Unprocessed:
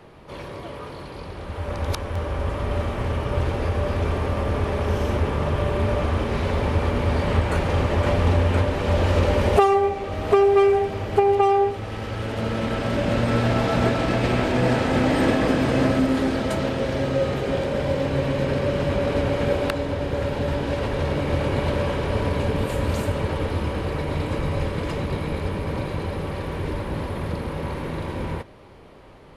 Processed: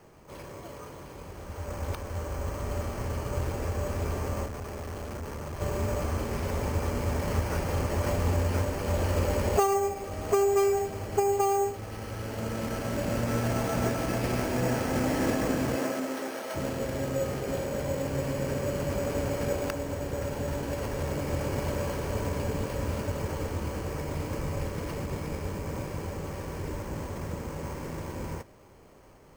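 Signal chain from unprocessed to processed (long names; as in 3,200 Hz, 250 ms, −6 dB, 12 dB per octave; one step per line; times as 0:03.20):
0:04.46–0:05.61: tube saturation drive 26 dB, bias 0.7
0:15.75–0:16.54: high-pass filter 270 Hz → 550 Hz 12 dB per octave
bad sample-rate conversion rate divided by 6×, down filtered, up hold
level −7.5 dB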